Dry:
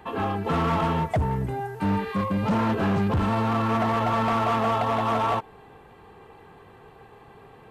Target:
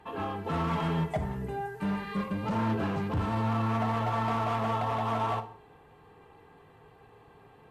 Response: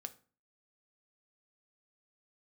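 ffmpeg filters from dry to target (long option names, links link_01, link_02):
-filter_complex "[0:a]asettb=1/sr,asplit=3[link_01][link_02][link_03];[link_01]atrim=end=0.714[link_04];[link_02]atrim=start=0.71:end=2.34,asetpts=PTS-STARTPTS,afade=type=in:duration=0.004:curve=qsin,afade=type=out:start_time=1.626:duration=0.004:curve=qsin,aecho=1:1:5:0.62,atrim=end_sample=71883[link_05];[link_03]atrim=start=2.336[link_06];[link_04][link_05]acrossfade=duration=0.004:curve1=hsin:curve2=qsin[link_07];[link_07][link_06]acrossfade=duration=0.004:curve1=qsin:curve2=hsin[link_08];[1:a]atrim=start_sample=2205,afade=type=out:start_time=0.17:duration=0.01,atrim=end_sample=7938,asetrate=26460,aresample=44100[link_09];[link_08][link_09]afir=irnorm=-1:irlink=0,volume=-5.5dB"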